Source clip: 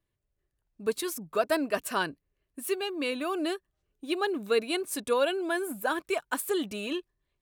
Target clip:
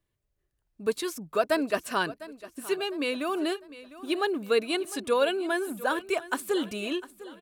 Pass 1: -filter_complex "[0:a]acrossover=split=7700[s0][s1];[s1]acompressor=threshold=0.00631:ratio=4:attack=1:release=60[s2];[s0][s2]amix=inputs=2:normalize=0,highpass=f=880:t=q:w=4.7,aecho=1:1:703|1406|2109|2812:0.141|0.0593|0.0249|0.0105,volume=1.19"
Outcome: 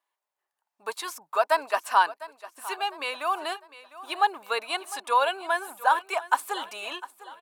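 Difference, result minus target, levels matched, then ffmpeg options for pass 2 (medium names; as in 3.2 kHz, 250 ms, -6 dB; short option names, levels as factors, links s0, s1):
1 kHz band +7.5 dB
-filter_complex "[0:a]acrossover=split=7700[s0][s1];[s1]acompressor=threshold=0.00631:ratio=4:attack=1:release=60[s2];[s0][s2]amix=inputs=2:normalize=0,aecho=1:1:703|1406|2109|2812:0.141|0.0593|0.0249|0.0105,volume=1.19"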